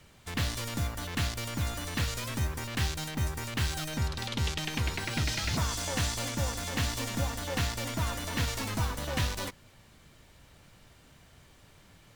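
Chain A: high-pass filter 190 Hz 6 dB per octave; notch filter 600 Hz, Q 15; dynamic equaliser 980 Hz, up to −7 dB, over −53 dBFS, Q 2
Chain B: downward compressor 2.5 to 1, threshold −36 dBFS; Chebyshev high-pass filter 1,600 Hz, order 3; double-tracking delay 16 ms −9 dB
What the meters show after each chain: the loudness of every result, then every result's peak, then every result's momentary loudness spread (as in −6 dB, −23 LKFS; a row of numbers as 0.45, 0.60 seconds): −34.5, −40.5 LKFS; −18.0, −23.0 dBFS; 5, 22 LU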